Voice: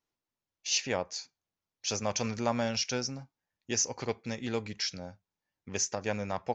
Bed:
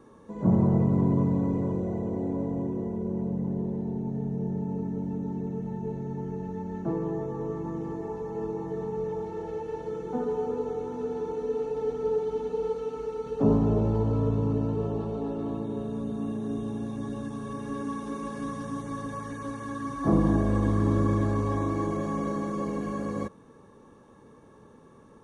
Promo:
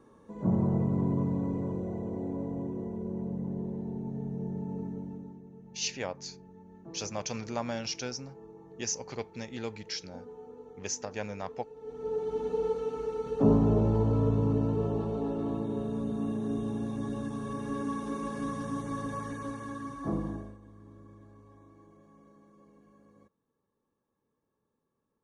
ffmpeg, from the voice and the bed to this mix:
-filter_complex "[0:a]adelay=5100,volume=-4dB[a];[1:a]volume=12dB,afade=t=out:st=4.84:d=0.57:silence=0.237137,afade=t=in:st=11.8:d=0.7:silence=0.141254,afade=t=out:st=19.21:d=1.36:silence=0.0398107[b];[a][b]amix=inputs=2:normalize=0"

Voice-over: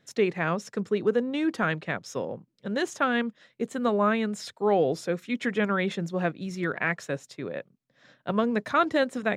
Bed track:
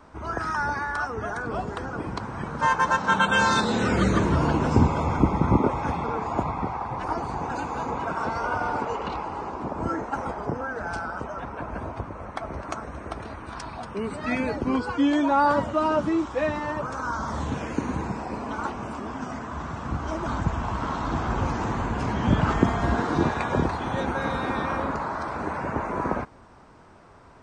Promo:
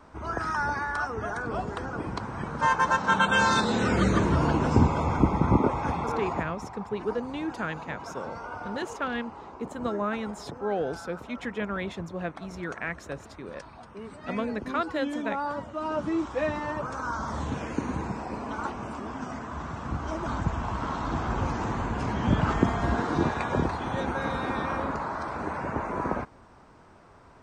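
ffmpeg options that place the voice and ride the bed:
-filter_complex "[0:a]adelay=6000,volume=-6dB[a];[1:a]volume=7dB,afade=t=out:st=6.28:d=0.22:silence=0.334965,afade=t=in:st=15.73:d=0.53:silence=0.375837[b];[a][b]amix=inputs=2:normalize=0"

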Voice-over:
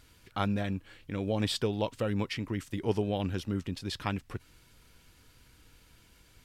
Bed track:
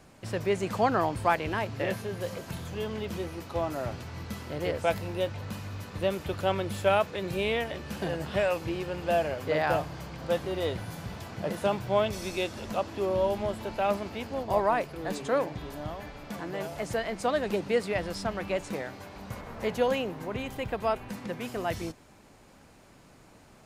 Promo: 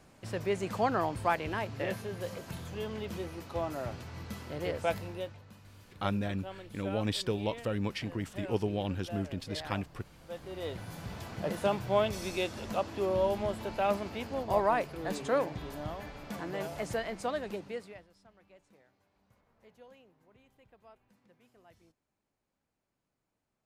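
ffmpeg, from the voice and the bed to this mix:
-filter_complex "[0:a]adelay=5650,volume=-2dB[a];[1:a]volume=11dB,afade=t=out:st=4.94:d=0.5:silence=0.223872,afade=t=in:st=10.27:d=0.95:silence=0.177828,afade=t=out:st=16.75:d=1.32:silence=0.0421697[b];[a][b]amix=inputs=2:normalize=0"

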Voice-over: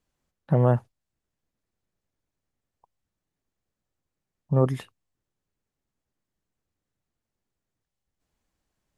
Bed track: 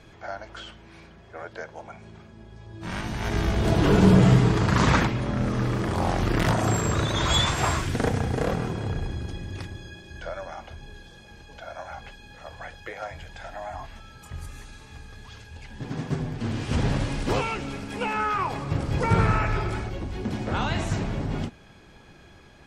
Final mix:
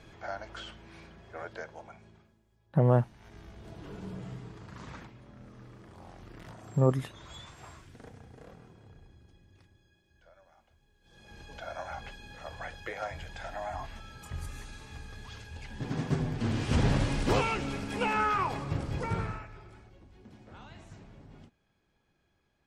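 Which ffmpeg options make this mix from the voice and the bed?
-filter_complex "[0:a]adelay=2250,volume=-3dB[a];[1:a]volume=21dB,afade=t=out:st=1.44:d=0.98:silence=0.0749894,afade=t=in:st=11.01:d=0.42:silence=0.0630957,afade=t=out:st=18.18:d=1.3:silence=0.0794328[b];[a][b]amix=inputs=2:normalize=0"

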